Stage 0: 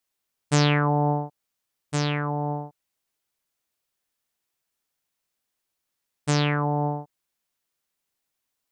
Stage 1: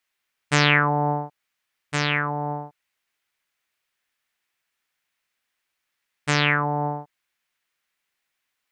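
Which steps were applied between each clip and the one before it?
bell 2000 Hz +13 dB 1.9 oct; gain -2.5 dB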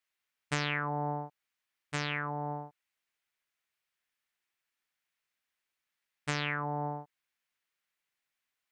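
compressor 3:1, threshold -21 dBFS, peak gain reduction 7.5 dB; gain -8 dB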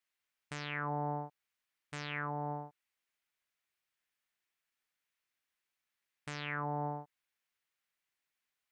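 limiter -24 dBFS, peak gain reduction 11 dB; gain -2 dB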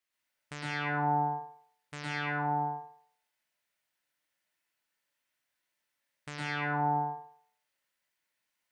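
reverb RT60 0.55 s, pre-delay 0.106 s, DRR -3.5 dB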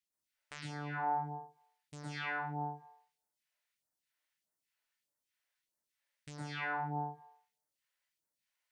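phaser stages 2, 1.6 Hz, lowest notch 140–2700 Hz; gain -4 dB

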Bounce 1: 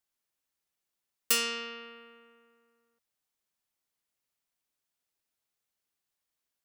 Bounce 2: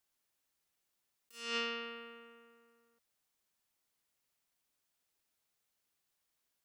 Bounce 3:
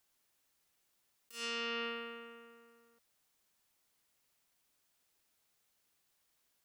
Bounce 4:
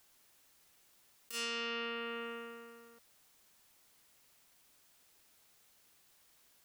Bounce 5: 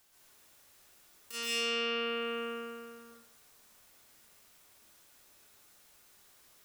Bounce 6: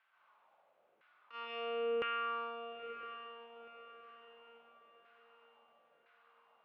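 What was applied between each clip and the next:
negative-ratio compressor -37 dBFS, ratio -0.5; gain -2.5 dB
limiter -37.5 dBFS, peak gain reduction 10 dB; gain +5.5 dB
compressor 6:1, threshold -47 dBFS, peak gain reduction 10.5 dB; gain +10 dB
plate-style reverb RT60 0.78 s, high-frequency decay 0.65×, pre-delay 0.115 s, DRR -5.5 dB
speaker cabinet 150–3000 Hz, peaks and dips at 280 Hz -9 dB, 390 Hz -8 dB, 1800 Hz -7 dB; LFO band-pass saw down 0.99 Hz 420–1700 Hz; diffused feedback echo 0.952 s, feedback 40%, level -10 dB; gain +7.5 dB

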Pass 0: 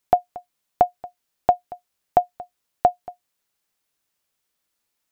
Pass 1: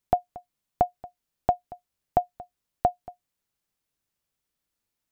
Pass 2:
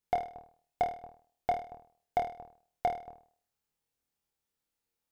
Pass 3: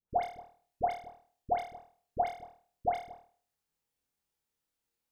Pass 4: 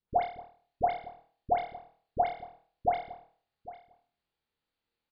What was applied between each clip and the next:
low shelf 250 Hz +11 dB; gain -7 dB
hard clip -15 dBFS, distortion -13 dB; small resonant body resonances 470/830 Hz, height 7 dB; on a send: flutter echo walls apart 4.4 m, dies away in 0.44 s; on the sum: gain -6.5 dB
dispersion highs, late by 0.106 s, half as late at 1200 Hz
steep low-pass 4700 Hz 96 dB/oct; echo 0.802 s -17.5 dB; gain +3 dB

